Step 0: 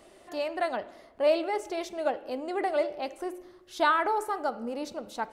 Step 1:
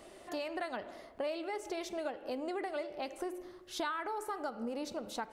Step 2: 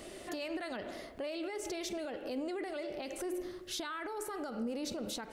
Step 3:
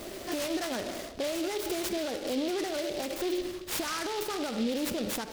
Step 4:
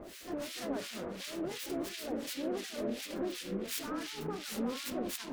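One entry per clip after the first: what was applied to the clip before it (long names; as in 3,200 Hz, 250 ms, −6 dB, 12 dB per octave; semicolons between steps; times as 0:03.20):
dynamic equaliser 660 Hz, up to −5 dB, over −35 dBFS, Q 1.2; downward compressor 5 to 1, threshold −36 dBFS, peak gain reduction 14 dB; level +1 dB
brickwall limiter −37 dBFS, peak gain reduction 12 dB; parametric band 920 Hz −8 dB 1.3 octaves; level +8.5 dB
short delay modulated by noise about 3,300 Hz, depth 0.088 ms; level +7 dB
delay with pitch and tempo change per echo 85 ms, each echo −3 semitones, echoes 3; two-band tremolo in antiphase 2.8 Hz, depth 100%, crossover 1,500 Hz; level −4 dB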